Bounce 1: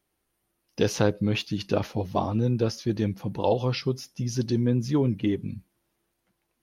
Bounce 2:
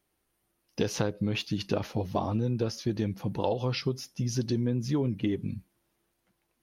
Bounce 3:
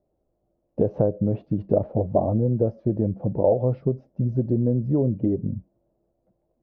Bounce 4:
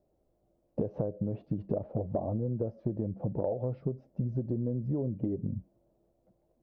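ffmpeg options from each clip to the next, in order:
-af "acompressor=threshold=-24dB:ratio=6"
-af "lowpass=f=610:t=q:w=4.9,lowshelf=f=360:g=10,volume=-2.5dB"
-af "acompressor=threshold=-29dB:ratio=6"

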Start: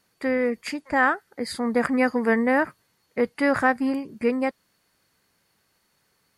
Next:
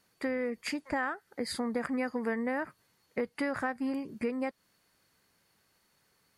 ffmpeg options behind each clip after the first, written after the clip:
-af "acompressor=threshold=-27dB:ratio=5,volume=-2.5dB"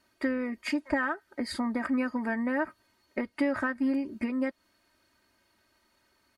-af "highshelf=f=5.3k:g=-9,aecho=1:1:3.2:0.82,volume=1.5dB"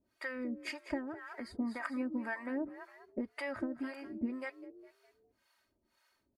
-filter_complex "[0:a]asplit=5[a][b][c][d][e];[b]adelay=205,afreqshift=46,volume=-13.5dB[f];[c]adelay=410,afreqshift=92,volume=-21.2dB[g];[d]adelay=615,afreqshift=138,volume=-29dB[h];[e]adelay=820,afreqshift=184,volume=-36.7dB[i];[a][f][g][h][i]amix=inputs=5:normalize=0,acrossover=split=580[j][k];[j]aeval=exprs='val(0)*(1-1/2+1/2*cos(2*PI*1.9*n/s))':c=same[l];[k]aeval=exprs='val(0)*(1-1/2-1/2*cos(2*PI*1.9*n/s))':c=same[m];[l][m]amix=inputs=2:normalize=0,volume=-3dB"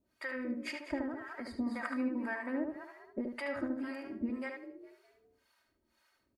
-filter_complex "[0:a]asplit=2[a][b];[b]adelay=74,lowpass=f=3.2k:p=1,volume=-3.5dB,asplit=2[c][d];[d]adelay=74,lowpass=f=3.2k:p=1,volume=0.25,asplit=2[e][f];[f]adelay=74,lowpass=f=3.2k:p=1,volume=0.25,asplit=2[g][h];[h]adelay=74,lowpass=f=3.2k:p=1,volume=0.25[i];[a][c][e][g][i]amix=inputs=5:normalize=0"

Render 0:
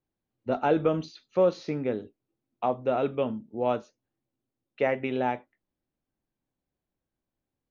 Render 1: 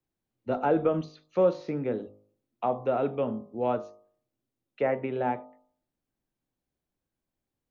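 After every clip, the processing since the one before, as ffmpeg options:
-filter_complex "[0:a]bandreject=f=51.41:t=h:w=4,bandreject=f=102.82:t=h:w=4,bandreject=f=154.23:t=h:w=4,bandreject=f=205.64:t=h:w=4,bandreject=f=257.05:t=h:w=4,bandreject=f=308.46:t=h:w=4,bandreject=f=359.87:t=h:w=4,bandreject=f=411.28:t=h:w=4,bandreject=f=462.69:t=h:w=4,bandreject=f=514.1:t=h:w=4,bandreject=f=565.51:t=h:w=4,bandreject=f=616.92:t=h:w=4,bandreject=f=668.33:t=h:w=4,bandreject=f=719.74:t=h:w=4,bandreject=f=771.15:t=h:w=4,bandreject=f=822.56:t=h:w=4,bandreject=f=873.97:t=h:w=4,bandreject=f=925.38:t=h:w=4,bandreject=f=976.79:t=h:w=4,bandreject=f=1.0282k:t=h:w=4,bandreject=f=1.07961k:t=h:w=4,bandreject=f=1.13102k:t=h:w=4,bandreject=f=1.18243k:t=h:w=4,bandreject=f=1.23384k:t=h:w=4,acrossover=split=110|600|1900[a][b][c][d];[d]acompressor=threshold=-53dB:ratio=6[e];[a][b][c][e]amix=inputs=4:normalize=0"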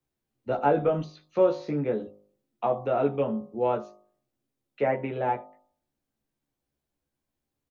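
-filter_complex "[0:a]asplit=2[a][b];[b]adelay=14,volume=-2.5dB[c];[a][c]amix=inputs=2:normalize=0"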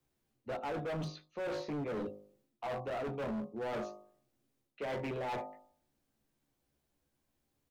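-af "areverse,acompressor=threshold=-33dB:ratio=8,areverse,asoftclip=type=hard:threshold=-38.5dB,volume=3.5dB"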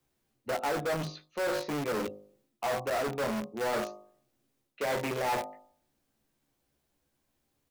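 -filter_complex "[0:a]lowshelf=f=340:g=-3,asplit=2[a][b];[b]acrusher=bits=5:mix=0:aa=0.000001,volume=-5.5dB[c];[a][c]amix=inputs=2:normalize=0,volume=4.5dB"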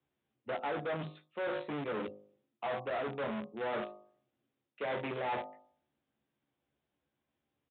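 -af "highpass=86,aresample=8000,aresample=44100,volume=-5dB"

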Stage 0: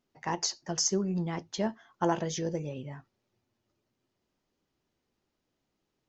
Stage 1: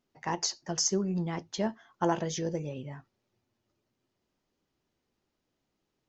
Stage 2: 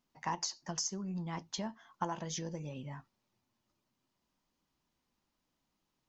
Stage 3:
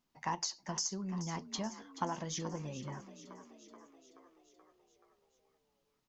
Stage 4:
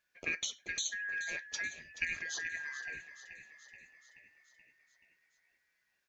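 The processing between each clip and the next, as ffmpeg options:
-af anull
-af "equalizer=f=930:w=0.56:g=-6.5,acompressor=threshold=-36dB:ratio=4,equalizer=f=100:t=o:w=0.67:g=-8,equalizer=f=400:t=o:w=0.67:g=-7,equalizer=f=1k:t=o:w=0.67:g=9,volume=1dB"
-filter_complex "[0:a]asplit=8[a][b][c][d][e][f][g][h];[b]adelay=429,afreqshift=42,volume=-13dB[i];[c]adelay=858,afreqshift=84,volume=-17.3dB[j];[d]adelay=1287,afreqshift=126,volume=-21.6dB[k];[e]adelay=1716,afreqshift=168,volume=-25.9dB[l];[f]adelay=2145,afreqshift=210,volume=-30.2dB[m];[g]adelay=2574,afreqshift=252,volume=-34.5dB[n];[h]adelay=3003,afreqshift=294,volume=-38.8dB[o];[a][i][j][k][l][m][n][o]amix=inputs=8:normalize=0"
-af "afftfilt=real='real(if(lt(b,272),68*(eq(floor(b/68),0)*1+eq(floor(b/68),1)*0+eq(floor(b/68),2)*3+eq(floor(b/68),3)*2)+mod(b,68),b),0)':imag='imag(if(lt(b,272),68*(eq(floor(b/68),0)*1+eq(floor(b/68),1)*0+eq(floor(b/68),2)*3+eq(floor(b/68),3)*2)+mod(b,68),b),0)':win_size=2048:overlap=0.75"

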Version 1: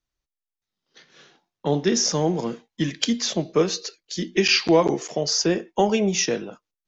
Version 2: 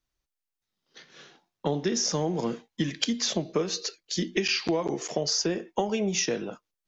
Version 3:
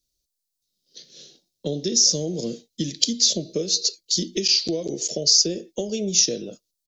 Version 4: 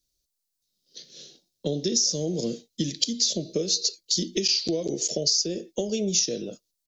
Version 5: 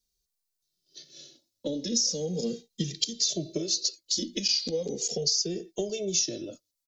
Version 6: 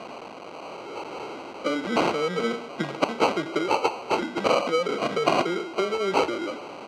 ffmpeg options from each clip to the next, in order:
-af "acompressor=threshold=-24dB:ratio=10,volume=1dB"
-af "firequalizer=gain_entry='entry(580,0);entry(880,-24);entry(4100,10)':delay=0.05:min_phase=1,volume=1dB"
-af "acompressor=threshold=-20dB:ratio=6"
-filter_complex "[0:a]asplit=2[a][b];[b]adelay=2.1,afreqshift=-0.39[c];[a][c]amix=inputs=2:normalize=1"
-af "aeval=exprs='val(0)+0.5*0.0178*sgn(val(0))':c=same,acrusher=samples=25:mix=1:aa=0.000001,highpass=300,lowpass=4.1k,volume=5.5dB"

